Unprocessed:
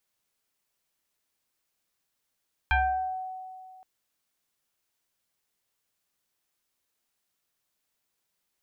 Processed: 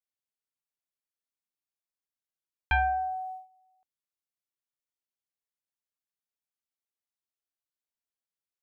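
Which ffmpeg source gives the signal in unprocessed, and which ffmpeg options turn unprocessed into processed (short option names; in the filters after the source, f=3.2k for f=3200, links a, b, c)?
-f lavfi -i "aevalsrc='0.112*pow(10,-3*t/2.24)*sin(2*PI*749*t+2.2*pow(10,-3*t/0.7)*sin(2*PI*1.09*749*t))':d=1.12:s=44100"
-af "agate=range=-19dB:threshold=-40dB:ratio=16:detection=peak"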